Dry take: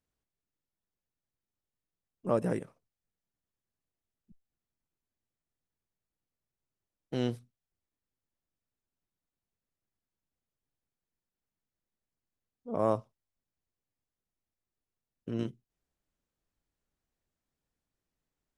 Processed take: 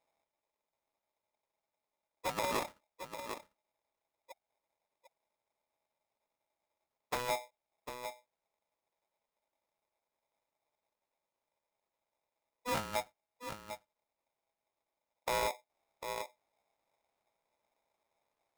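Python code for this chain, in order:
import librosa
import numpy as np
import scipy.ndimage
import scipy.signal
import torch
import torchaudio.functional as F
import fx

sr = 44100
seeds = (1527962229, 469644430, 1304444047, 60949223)

y = scipy.signal.sosfilt(scipy.signal.butter(2, 82.0, 'highpass', fs=sr, output='sos'), x)
y = fx.over_compress(y, sr, threshold_db=-33.0, ratio=-0.5)
y = fx.tilt_eq(y, sr, slope=-3.0)
y = y + 10.0 ** (-11.0 / 20.0) * np.pad(y, (int(749 * sr / 1000.0), 0))[:len(y)]
y = fx.tube_stage(y, sr, drive_db=31.0, bias=0.75)
y = y * np.sign(np.sin(2.0 * np.pi * 740.0 * np.arange(len(y)) / sr))
y = F.gain(torch.from_numpy(y), 2.0).numpy()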